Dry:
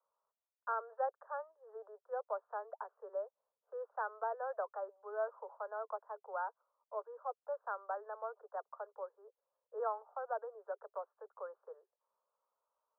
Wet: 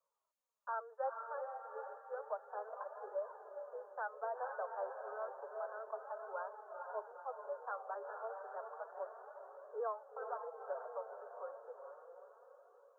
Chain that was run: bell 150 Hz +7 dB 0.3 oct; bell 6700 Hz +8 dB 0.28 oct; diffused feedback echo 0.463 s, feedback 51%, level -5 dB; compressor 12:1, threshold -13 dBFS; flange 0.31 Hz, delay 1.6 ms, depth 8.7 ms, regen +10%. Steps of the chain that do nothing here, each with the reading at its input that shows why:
bell 150 Hz: input band starts at 360 Hz; bell 6700 Hz: input band ends at 1700 Hz; compressor, threshold -13 dBFS: input peak -24.5 dBFS

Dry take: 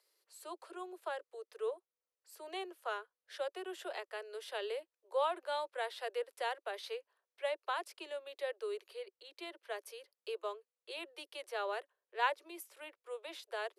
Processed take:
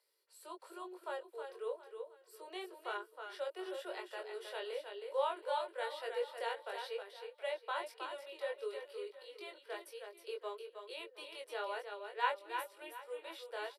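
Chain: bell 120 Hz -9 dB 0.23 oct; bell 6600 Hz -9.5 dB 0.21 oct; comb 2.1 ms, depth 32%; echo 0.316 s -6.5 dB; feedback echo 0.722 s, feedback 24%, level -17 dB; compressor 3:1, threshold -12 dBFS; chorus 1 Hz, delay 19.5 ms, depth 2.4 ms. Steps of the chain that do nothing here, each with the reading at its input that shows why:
bell 120 Hz: input band starts at 290 Hz; compressor, threshold -12 dBFS: input peak -19.0 dBFS

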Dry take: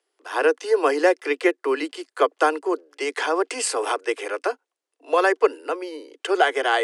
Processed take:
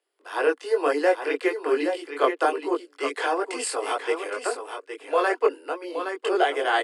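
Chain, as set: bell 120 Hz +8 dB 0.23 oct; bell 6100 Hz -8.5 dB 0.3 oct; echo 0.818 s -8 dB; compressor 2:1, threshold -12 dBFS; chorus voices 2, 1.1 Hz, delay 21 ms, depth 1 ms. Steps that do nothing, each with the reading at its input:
bell 120 Hz: input band starts at 240 Hz

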